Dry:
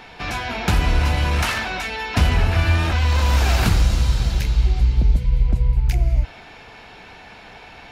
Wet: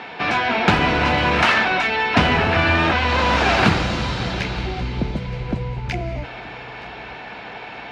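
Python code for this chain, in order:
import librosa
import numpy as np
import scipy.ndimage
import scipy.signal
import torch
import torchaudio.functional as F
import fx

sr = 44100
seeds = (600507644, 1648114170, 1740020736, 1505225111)

y = fx.bandpass_edges(x, sr, low_hz=190.0, high_hz=3300.0)
y = fx.echo_feedback(y, sr, ms=923, feedback_pct=36, wet_db=-19)
y = y * librosa.db_to_amplitude(8.0)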